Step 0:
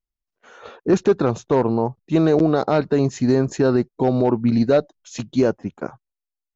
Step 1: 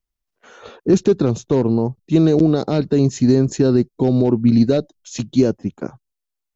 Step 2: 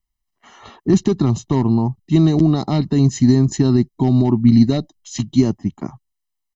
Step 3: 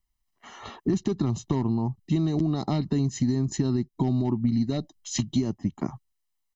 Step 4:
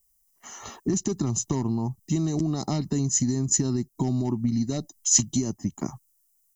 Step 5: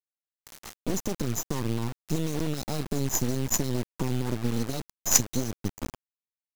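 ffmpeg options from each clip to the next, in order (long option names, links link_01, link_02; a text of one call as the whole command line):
ffmpeg -i in.wav -filter_complex "[0:a]acrossover=split=420|3000[link_01][link_02][link_03];[link_02]acompressor=threshold=-57dB:ratio=1.5[link_04];[link_01][link_04][link_03]amix=inputs=3:normalize=0,volume=5dB" out.wav
ffmpeg -i in.wav -af "aecho=1:1:1:0.86,volume=-1dB" out.wav
ffmpeg -i in.wav -af "acompressor=threshold=-22dB:ratio=6" out.wav
ffmpeg -i in.wav -af "aexciter=amount=10.9:drive=2.4:freq=5500,volume=-1dB" out.wav
ffmpeg -i in.wav -af "acrusher=bits=3:dc=4:mix=0:aa=0.000001" out.wav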